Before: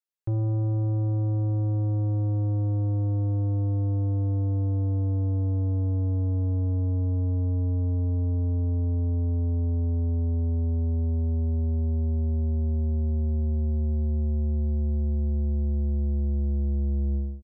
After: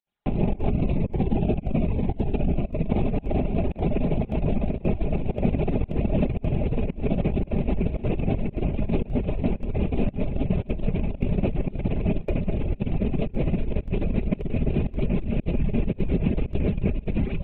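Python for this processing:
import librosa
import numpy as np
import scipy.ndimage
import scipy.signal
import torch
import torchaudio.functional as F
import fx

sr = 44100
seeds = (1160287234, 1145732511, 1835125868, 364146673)

y = fx.rattle_buzz(x, sr, strikes_db=-34.0, level_db=-35.0)
y = fx.peak_eq(y, sr, hz=720.0, db=12.5, octaves=0.59)
y = (np.kron(y[::6], np.eye(6)[0]) * 6)[:len(y)]
y = fx.lpc_vocoder(y, sr, seeds[0], excitation='whisper', order=10)
y = fx.echo_diffused(y, sr, ms=1159, feedback_pct=61, wet_db=-8.5)
y = fx.dereverb_blind(y, sr, rt60_s=0.68)
y = fx.over_compress(y, sr, threshold_db=-27.0, ratio=-0.5)
y = fx.peak_eq(y, sr, hz=300.0, db=5.5, octaves=1.9)
y = y + 0.32 * np.pad(y, (int(4.9 * sr / 1000.0), 0))[:len(y)]
y = fx.volume_shaper(y, sr, bpm=113, per_beat=1, depth_db=-22, release_ms=68.0, shape='slow start')
y = fx.notch_cascade(y, sr, direction='falling', hz=1.1, at=(0.69, 2.88), fade=0.02)
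y = y * 10.0 ** (3.0 / 20.0)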